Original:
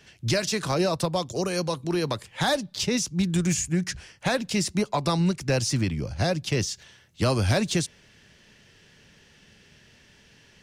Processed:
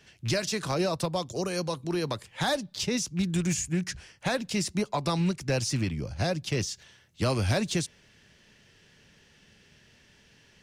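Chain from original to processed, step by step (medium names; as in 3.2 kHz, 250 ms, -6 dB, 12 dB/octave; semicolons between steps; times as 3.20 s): rattle on loud lows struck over -25 dBFS, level -31 dBFS; trim -3.5 dB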